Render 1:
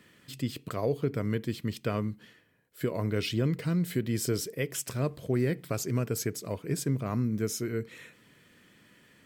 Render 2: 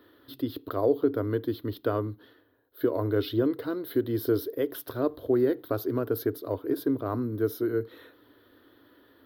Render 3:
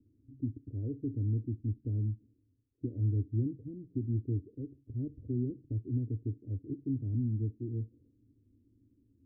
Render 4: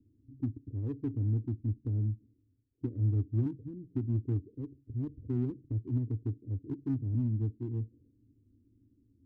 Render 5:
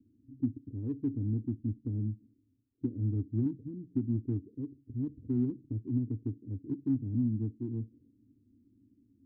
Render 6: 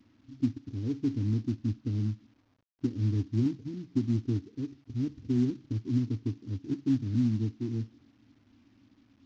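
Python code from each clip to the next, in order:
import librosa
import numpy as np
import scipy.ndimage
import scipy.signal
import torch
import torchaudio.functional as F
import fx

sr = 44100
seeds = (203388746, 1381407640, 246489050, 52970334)

y1 = fx.curve_eq(x, sr, hz=(110.0, 170.0, 280.0, 510.0, 1500.0, 2400.0, 3700.0, 7500.0, 13000.0), db=(0, -26, 9, 5, 3, -16, 3, -28, 5))
y2 = scipy.signal.sosfilt(scipy.signal.cheby2(4, 80, 1200.0, 'lowpass', fs=sr, output='sos'), y1)
y2 = y2 * librosa.db_to_amplitude(4.0)
y3 = fx.wiener(y2, sr, points=41)
y3 = y3 * librosa.db_to_amplitude(1.5)
y4 = fx.peak_eq(y3, sr, hz=230.0, db=13.0, octaves=1.6)
y4 = y4 * librosa.db_to_amplitude(-8.0)
y5 = fx.cvsd(y4, sr, bps=32000)
y5 = y5 * librosa.db_to_amplitude(3.5)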